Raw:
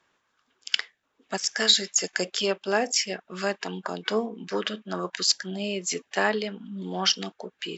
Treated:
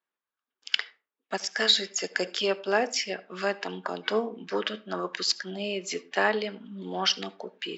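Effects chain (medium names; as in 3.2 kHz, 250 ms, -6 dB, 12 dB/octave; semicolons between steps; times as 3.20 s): gate with hold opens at -48 dBFS; band-pass 230–4600 Hz; on a send: reverberation RT60 0.35 s, pre-delay 64 ms, DRR 19 dB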